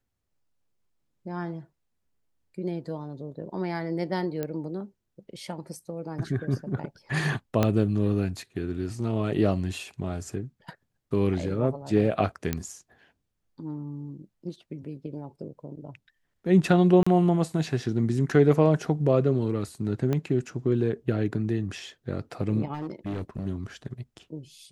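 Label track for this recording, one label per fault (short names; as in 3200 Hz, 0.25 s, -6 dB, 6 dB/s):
4.430000	4.430000	pop -17 dBFS
7.630000	7.630000	pop -9 dBFS
12.530000	12.530000	pop -12 dBFS
17.030000	17.070000	gap 35 ms
20.130000	20.130000	pop -15 dBFS
22.730000	23.460000	clipped -28 dBFS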